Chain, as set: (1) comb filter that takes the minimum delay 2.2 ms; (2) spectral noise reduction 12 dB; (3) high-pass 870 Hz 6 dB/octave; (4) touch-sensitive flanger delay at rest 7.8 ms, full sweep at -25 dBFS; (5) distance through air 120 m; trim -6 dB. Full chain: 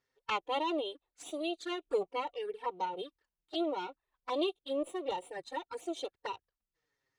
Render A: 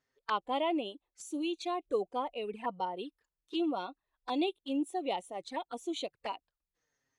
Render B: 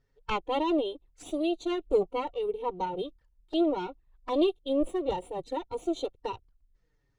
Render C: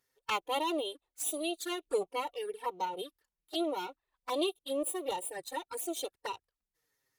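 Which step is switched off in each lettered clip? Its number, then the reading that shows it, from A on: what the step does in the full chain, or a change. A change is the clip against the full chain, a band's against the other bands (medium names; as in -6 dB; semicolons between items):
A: 1, 250 Hz band +4.5 dB; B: 3, 250 Hz band +7.5 dB; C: 5, 8 kHz band +14.0 dB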